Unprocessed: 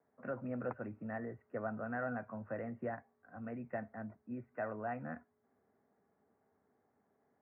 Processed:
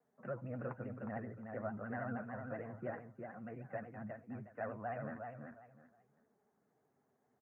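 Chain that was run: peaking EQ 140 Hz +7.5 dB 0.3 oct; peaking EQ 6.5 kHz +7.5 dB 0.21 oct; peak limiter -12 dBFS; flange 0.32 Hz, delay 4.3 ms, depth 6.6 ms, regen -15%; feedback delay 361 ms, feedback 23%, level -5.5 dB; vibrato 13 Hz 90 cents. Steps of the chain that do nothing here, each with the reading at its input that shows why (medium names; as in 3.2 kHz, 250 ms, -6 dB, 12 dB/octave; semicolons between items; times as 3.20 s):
peaking EQ 6.5 kHz: input has nothing above 2 kHz; peak limiter -12 dBFS: peak at its input -26.0 dBFS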